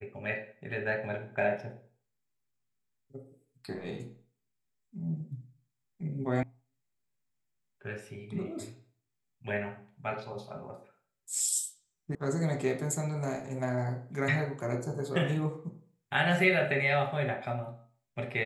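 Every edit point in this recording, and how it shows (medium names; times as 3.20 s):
6.43 s: sound stops dead
12.15 s: sound stops dead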